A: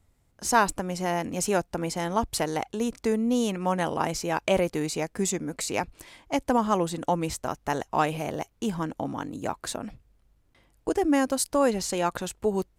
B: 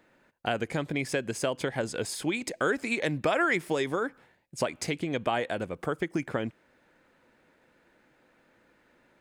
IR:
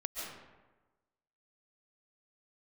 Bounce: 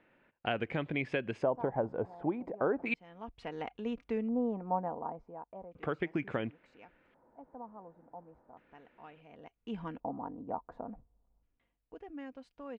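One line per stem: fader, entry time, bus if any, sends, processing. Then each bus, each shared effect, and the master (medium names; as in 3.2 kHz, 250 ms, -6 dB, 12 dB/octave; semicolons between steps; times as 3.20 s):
11.41 s -11 dB -> 11.81 s -23 dB, 1.05 s, no send, comb 4.2 ms, depth 36%; auto duck -18 dB, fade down 1.00 s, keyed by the second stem
-4.0 dB, 0.00 s, muted 2.94–5.75 s, no send, none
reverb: none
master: LFO low-pass square 0.35 Hz 870–2800 Hz; treble shelf 2.4 kHz -10 dB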